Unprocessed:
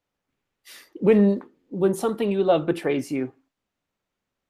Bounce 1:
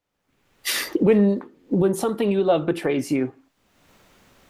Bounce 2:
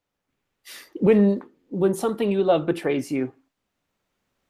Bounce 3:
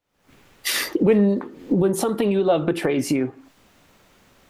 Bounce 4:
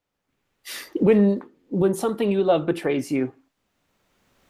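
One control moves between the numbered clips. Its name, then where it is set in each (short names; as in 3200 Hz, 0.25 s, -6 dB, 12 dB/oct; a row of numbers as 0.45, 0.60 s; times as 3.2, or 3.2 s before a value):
recorder AGC, rising by: 34, 5.1, 84, 14 dB/s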